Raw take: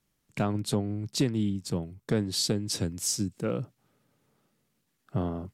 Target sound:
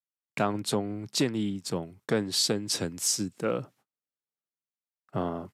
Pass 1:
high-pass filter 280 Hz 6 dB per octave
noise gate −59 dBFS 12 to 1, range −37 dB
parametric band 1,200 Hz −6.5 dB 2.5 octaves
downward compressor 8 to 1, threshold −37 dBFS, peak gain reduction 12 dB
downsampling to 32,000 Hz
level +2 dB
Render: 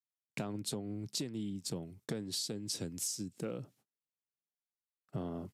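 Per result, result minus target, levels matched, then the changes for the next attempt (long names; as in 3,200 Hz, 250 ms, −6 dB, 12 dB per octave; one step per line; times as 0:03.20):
downward compressor: peak gain reduction +12 dB; 1,000 Hz band −6.5 dB
remove: downward compressor 8 to 1, threshold −37 dBFS, peak gain reduction 12 dB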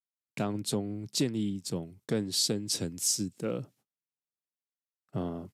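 1,000 Hz band −7.0 dB
change: parametric band 1,200 Hz +4 dB 2.5 octaves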